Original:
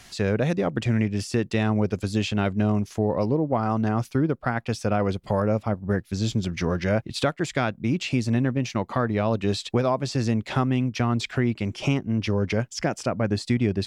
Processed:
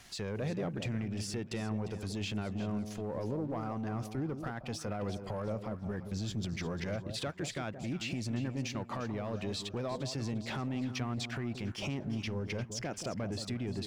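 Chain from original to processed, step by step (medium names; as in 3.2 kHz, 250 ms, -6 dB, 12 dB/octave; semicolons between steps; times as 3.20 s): waveshaping leveller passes 1; peak limiter -21 dBFS, peak gain reduction 10 dB; echo whose repeats swap between lows and highs 175 ms, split 840 Hz, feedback 54%, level -8 dB; trim -8.5 dB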